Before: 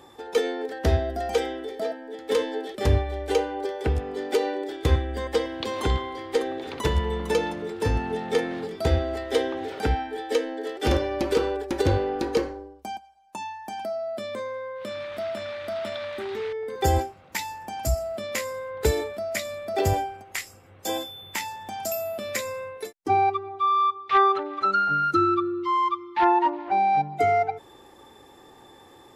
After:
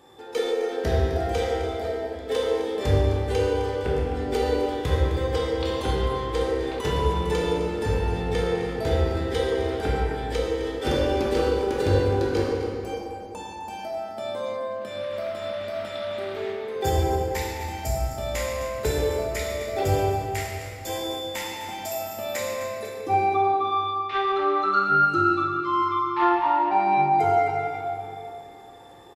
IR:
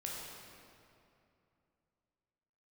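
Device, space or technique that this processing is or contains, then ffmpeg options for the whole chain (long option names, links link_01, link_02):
cave: -filter_complex "[0:a]aecho=1:1:259:0.237[link_01];[1:a]atrim=start_sample=2205[link_02];[link_01][link_02]afir=irnorm=-1:irlink=0"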